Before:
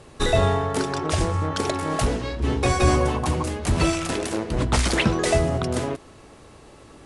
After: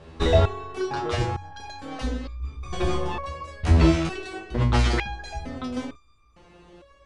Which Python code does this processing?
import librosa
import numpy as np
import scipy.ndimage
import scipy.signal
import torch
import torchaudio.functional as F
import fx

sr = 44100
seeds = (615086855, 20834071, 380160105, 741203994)

y = scipy.signal.sosfilt(scipy.signal.butter(2, 4300.0, 'lowpass', fs=sr, output='sos'), x)
y = fx.peak_eq(y, sr, hz=60.0, db=14.0, octaves=0.39)
y = fx.resonator_held(y, sr, hz=2.2, low_hz=81.0, high_hz=1200.0)
y = y * librosa.db_to_amplitude(9.0)